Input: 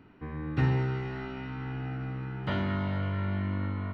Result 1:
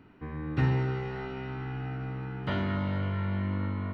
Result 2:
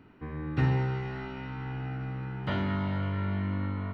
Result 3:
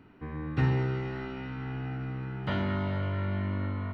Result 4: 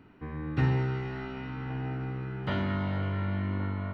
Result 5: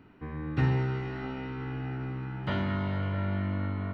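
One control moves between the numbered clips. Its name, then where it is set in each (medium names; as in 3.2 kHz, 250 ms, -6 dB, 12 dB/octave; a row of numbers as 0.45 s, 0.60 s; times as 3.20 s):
feedback echo behind a band-pass, time: 285 ms, 73 ms, 129 ms, 1117 ms, 657 ms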